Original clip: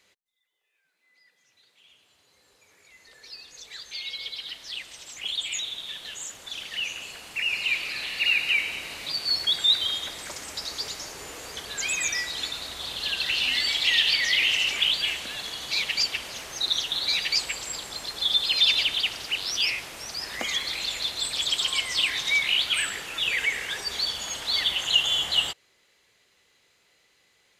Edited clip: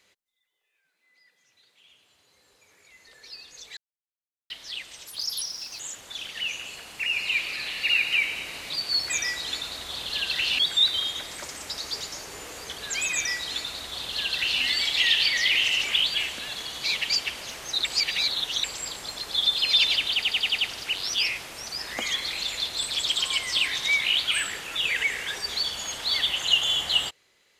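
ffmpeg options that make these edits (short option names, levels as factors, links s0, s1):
-filter_complex "[0:a]asplit=14[s0][s1][s2][s3][s4][s5][s6][s7][s8][s9][s10][s11][s12][s13];[s0]atrim=end=3.77,asetpts=PTS-STARTPTS,afade=t=out:st=3.766:d=0.004:c=hsin[s14];[s1]atrim=start=3.77:end=4.5,asetpts=PTS-STARTPTS,volume=0[s15];[s2]atrim=start=4.5:end=5.074,asetpts=PTS-STARTPTS,afade=t=in:d=0.004:c=hsin[s16];[s3]atrim=start=5.07:end=6.16,asetpts=PTS-STARTPTS,asetrate=66150,aresample=44100[s17];[s4]atrim=start=6.156:end=9.462[s18];[s5]atrim=start=11.998:end=13.492[s19];[s6]atrim=start=9.458:end=16.722[s20];[s7]atrim=start=16.718:end=17.512,asetpts=PTS-STARTPTS,areverse[s21];[s8]atrim=start=17.508:end=19.102[s22];[s9]atrim=start=19.008:end=19.102[s23];[s10]atrim=start=19.008:end=19.102[s24];[s11]atrim=start=19.008:end=19.102[s25];[s12]atrim=start=19.008:end=19.102[s26];[s13]atrim=start=19.008[s27];[s14][s15][s16]concat=n=3:v=0:a=1[s28];[s28][s17]acrossfade=d=0.004:c1=hsin:c2=hsin[s29];[s29][s18]acrossfade=d=0.004:c1=hsin:c2=hsin[s30];[s30][s19]acrossfade=d=0.004:c1=hsin:c2=hsin[s31];[s31][s20]acrossfade=d=0.004:c1=hsin:c2=hsin[s32];[s32][s21]acrossfade=d=0.004:c1=hsin:c2=hsin[s33];[s33][s22]acrossfade=d=0.004:c1=hsin:c2=hsin[s34];[s34][s23]acrossfade=d=0.004:c1=hsin:c2=hsin[s35];[s35][s24]acrossfade=d=0.004:c1=hsin:c2=hsin[s36];[s36][s25]acrossfade=d=0.004:c1=hsin:c2=hsin[s37];[s37][s26]acrossfade=d=0.004:c1=hsin:c2=hsin[s38];[s38][s27]acrossfade=d=0.004:c1=hsin:c2=hsin"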